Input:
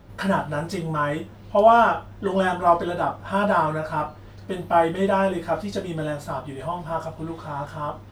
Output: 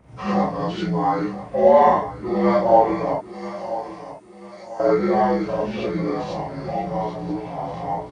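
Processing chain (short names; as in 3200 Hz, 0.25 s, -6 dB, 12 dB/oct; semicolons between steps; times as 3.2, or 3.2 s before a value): inharmonic rescaling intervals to 82%; 3.11–4.8 differentiator; on a send: feedback echo 0.989 s, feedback 37%, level -14 dB; on the sum: non-linear reverb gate 0.11 s rising, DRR -6.5 dB; gain -2.5 dB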